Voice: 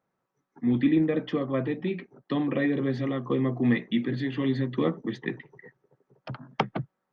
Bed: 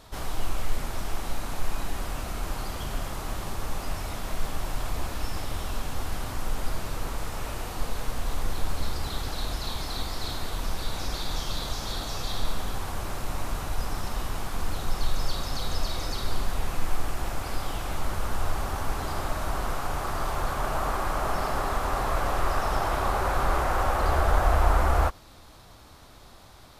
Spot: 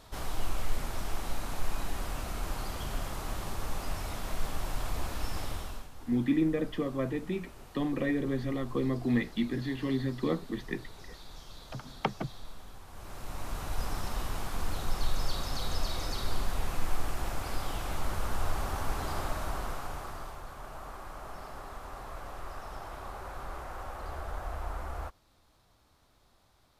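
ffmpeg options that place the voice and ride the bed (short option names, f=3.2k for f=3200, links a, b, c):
-filter_complex "[0:a]adelay=5450,volume=-4.5dB[a];[1:a]volume=10.5dB,afade=t=out:st=5.46:d=0.43:silence=0.199526,afade=t=in:st=12.88:d=0.95:silence=0.199526,afade=t=out:st=19.18:d=1.23:silence=0.237137[b];[a][b]amix=inputs=2:normalize=0"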